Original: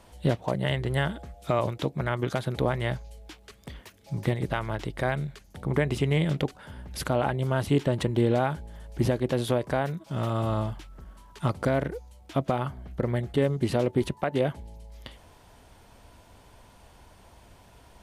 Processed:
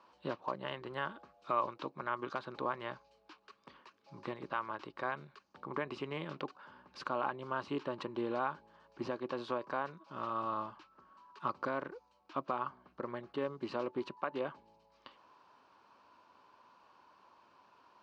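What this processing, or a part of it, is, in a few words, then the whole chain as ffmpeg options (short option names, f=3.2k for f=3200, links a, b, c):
phone earpiece: -af "highpass=400,equalizer=f=460:t=q:w=4:g=-6,equalizer=f=690:t=q:w=4:g=-9,equalizer=f=1.1k:t=q:w=4:g=9,equalizer=f=2k:t=q:w=4:g=-10,equalizer=f=3.4k:t=q:w=4:g=-10,lowpass=f=4.4k:w=0.5412,lowpass=f=4.4k:w=1.3066,volume=-5.5dB"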